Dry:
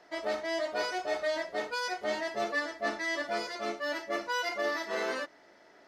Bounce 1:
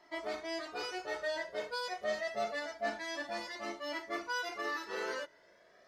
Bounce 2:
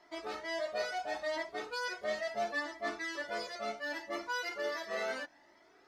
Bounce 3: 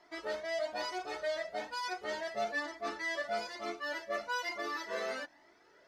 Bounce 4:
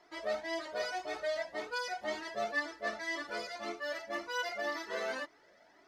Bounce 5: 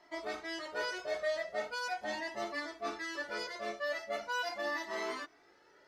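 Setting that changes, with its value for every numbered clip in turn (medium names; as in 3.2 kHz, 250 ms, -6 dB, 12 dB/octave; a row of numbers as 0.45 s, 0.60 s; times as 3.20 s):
Shepard-style flanger, rate: 0.26 Hz, 0.72 Hz, 1.1 Hz, 1.9 Hz, 0.4 Hz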